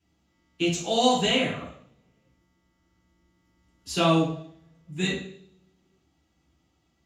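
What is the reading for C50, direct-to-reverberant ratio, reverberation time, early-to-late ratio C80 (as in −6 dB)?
3.5 dB, −7.5 dB, 0.60 s, 7.5 dB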